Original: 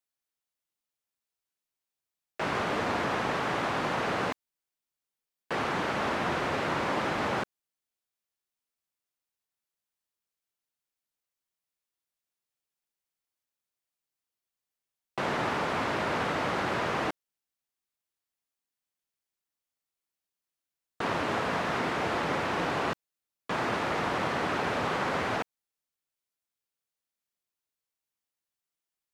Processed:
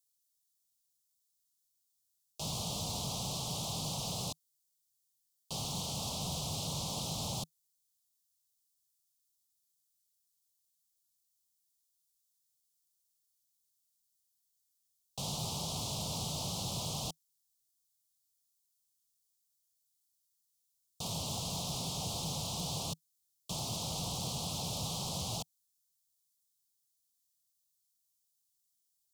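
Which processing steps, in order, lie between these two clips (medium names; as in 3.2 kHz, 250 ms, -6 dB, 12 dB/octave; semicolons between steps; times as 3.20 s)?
FFT filter 160 Hz 0 dB, 340 Hz -23 dB, 760 Hz -9 dB, 1.3 kHz -6 dB, 1.9 kHz -13 dB, 3.1 kHz +3 dB, 7.3 kHz +9 dB; wavefolder -32 dBFS; Butterworth band-stop 1.7 kHz, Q 0.58; trim +2.5 dB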